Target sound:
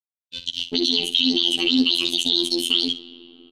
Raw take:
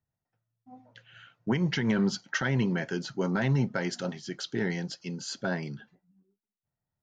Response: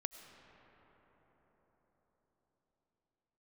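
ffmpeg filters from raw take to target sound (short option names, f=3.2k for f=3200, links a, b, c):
-filter_complex "[0:a]bandreject=f=920:w=8.3,aeval=exprs='val(0)*gte(abs(val(0)),0.00355)':c=same,acompressor=threshold=-32dB:ratio=6,firequalizer=gain_entry='entry(110,0);entry(270,-27);entry(800,-22);entry(1500,8);entry(2500,-6);entry(7800,-27)':delay=0.05:min_phase=1,aecho=1:1:115:0.237,asetrate=88200,aresample=44100,equalizer=f=4.3k:t=o:w=0.38:g=11.5,asplit=2[a][b];[1:a]atrim=start_sample=2205[c];[b][c]afir=irnorm=-1:irlink=0,volume=-8.5dB[d];[a][d]amix=inputs=2:normalize=0,afftfilt=real='hypot(re,im)*cos(PI*b)':imag='0':win_size=2048:overlap=0.75,alimiter=level_in=27dB:limit=-1dB:release=50:level=0:latency=1,volume=-3dB"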